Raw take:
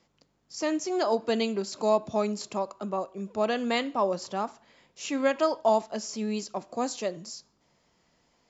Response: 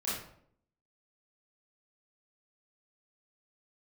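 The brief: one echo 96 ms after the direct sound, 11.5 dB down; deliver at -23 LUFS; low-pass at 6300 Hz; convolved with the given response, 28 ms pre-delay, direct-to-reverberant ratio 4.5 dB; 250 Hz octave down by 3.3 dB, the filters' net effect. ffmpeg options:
-filter_complex "[0:a]lowpass=6.3k,equalizer=f=250:t=o:g=-4,aecho=1:1:96:0.266,asplit=2[a][b];[1:a]atrim=start_sample=2205,adelay=28[c];[b][c]afir=irnorm=-1:irlink=0,volume=-9.5dB[d];[a][d]amix=inputs=2:normalize=0,volume=5.5dB"

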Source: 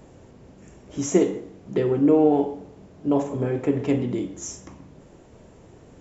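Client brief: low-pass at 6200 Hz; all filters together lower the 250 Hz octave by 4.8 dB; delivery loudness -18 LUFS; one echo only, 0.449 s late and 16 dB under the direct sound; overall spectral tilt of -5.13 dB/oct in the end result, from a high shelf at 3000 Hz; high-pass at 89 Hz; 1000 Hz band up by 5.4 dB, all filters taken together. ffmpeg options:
-af "highpass=89,lowpass=6.2k,equalizer=f=250:t=o:g=-7,equalizer=f=1k:t=o:g=7.5,highshelf=f=3k:g=9,aecho=1:1:449:0.158,volume=7dB"

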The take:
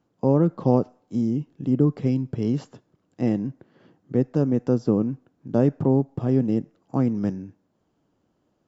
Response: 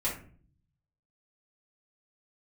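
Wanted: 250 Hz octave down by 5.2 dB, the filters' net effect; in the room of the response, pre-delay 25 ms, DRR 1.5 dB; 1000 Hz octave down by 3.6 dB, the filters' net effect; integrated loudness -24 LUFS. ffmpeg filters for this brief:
-filter_complex "[0:a]equalizer=f=250:t=o:g=-6,equalizer=f=1k:t=o:g=-4.5,asplit=2[a][b];[1:a]atrim=start_sample=2205,adelay=25[c];[b][c]afir=irnorm=-1:irlink=0,volume=-8dB[d];[a][d]amix=inputs=2:normalize=0,volume=0.5dB"

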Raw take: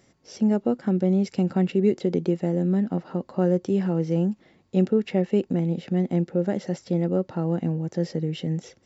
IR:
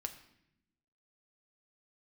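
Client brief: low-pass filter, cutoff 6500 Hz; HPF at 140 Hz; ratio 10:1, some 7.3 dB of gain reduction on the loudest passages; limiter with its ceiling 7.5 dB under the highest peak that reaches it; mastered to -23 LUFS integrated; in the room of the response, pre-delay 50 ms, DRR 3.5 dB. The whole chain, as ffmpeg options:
-filter_complex "[0:a]highpass=140,lowpass=6.5k,acompressor=threshold=-24dB:ratio=10,alimiter=limit=-21.5dB:level=0:latency=1,asplit=2[a][b];[1:a]atrim=start_sample=2205,adelay=50[c];[b][c]afir=irnorm=-1:irlink=0,volume=-2dB[d];[a][d]amix=inputs=2:normalize=0,volume=7dB"

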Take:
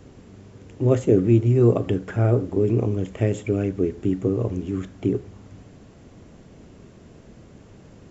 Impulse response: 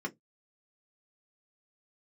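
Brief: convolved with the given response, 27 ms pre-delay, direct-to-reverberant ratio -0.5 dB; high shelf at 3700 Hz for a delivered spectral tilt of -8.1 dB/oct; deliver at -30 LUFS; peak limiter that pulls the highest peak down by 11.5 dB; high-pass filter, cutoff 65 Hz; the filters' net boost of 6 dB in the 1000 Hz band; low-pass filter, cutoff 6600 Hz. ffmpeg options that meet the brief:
-filter_complex "[0:a]highpass=65,lowpass=6.6k,equalizer=f=1k:t=o:g=8,highshelf=f=3.7k:g=7.5,alimiter=limit=-15dB:level=0:latency=1,asplit=2[a][b];[1:a]atrim=start_sample=2205,adelay=27[c];[b][c]afir=irnorm=-1:irlink=0,volume=-2.5dB[d];[a][d]amix=inputs=2:normalize=0,volume=-10dB"

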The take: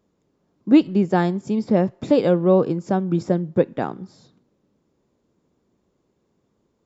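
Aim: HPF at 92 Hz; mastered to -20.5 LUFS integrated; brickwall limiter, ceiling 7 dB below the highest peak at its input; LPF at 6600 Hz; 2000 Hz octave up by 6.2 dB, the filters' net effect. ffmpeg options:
-af "highpass=92,lowpass=6.6k,equalizer=f=2k:t=o:g=8,volume=2dB,alimiter=limit=-8.5dB:level=0:latency=1"

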